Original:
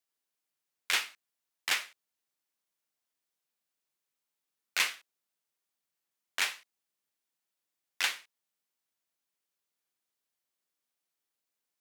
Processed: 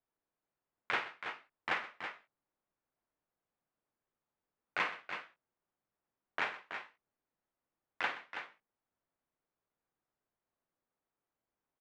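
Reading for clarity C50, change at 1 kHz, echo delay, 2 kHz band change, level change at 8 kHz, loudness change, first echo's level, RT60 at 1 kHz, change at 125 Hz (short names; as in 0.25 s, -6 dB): none, +3.5 dB, 51 ms, -3.5 dB, -25.5 dB, -7.5 dB, -12.0 dB, none, n/a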